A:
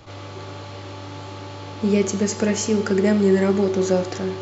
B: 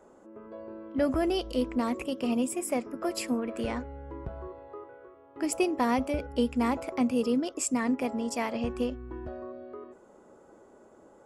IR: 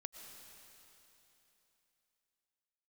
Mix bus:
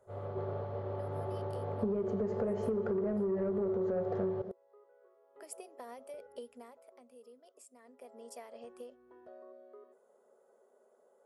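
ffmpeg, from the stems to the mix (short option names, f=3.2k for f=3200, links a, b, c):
-filter_complex "[0:a]agate=range=-33dB:threshold=-30dB:ratio=3:detection=peak,lowpass=1k,alimiter=limit=-16dB:level=0:latency=1:release=84,volume=-2.5dB,asplit=3[a][b][c];[b]volume=-4.5dB[d];[1:a]highpass=340,acompressor=threshold=-34dB:ratio=6,volume=-4dB,afade=t=out:st=6.44:d=0.39:silence=0.298538,afade=t=in:st=7.83:d=0.49:silence=0.354813[e];[c]apad=whole_len=496536[f];[e][f]sidechaincompress=threshold=-42dB:ratio=6:attack=36:release=849[g];[2:a]atrim=start_sample=2205[h];[d][h]afir=irnorm=-1:irlink=0[i];[a][g][i]amix=inputs=3:normalize=0,superequalizer=6b=0.282:7b=2:8b=2:12b=0.631:16b=3.16,asoftclip=type=tanh:threshold=-13.5dB,acompressor=threshold=-30dB:ratio=12"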